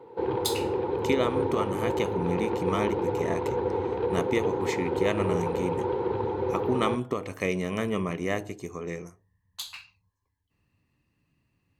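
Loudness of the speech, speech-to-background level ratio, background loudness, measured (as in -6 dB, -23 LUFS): -31.5 LUFS, -2.5 dB, -29.0 LUFS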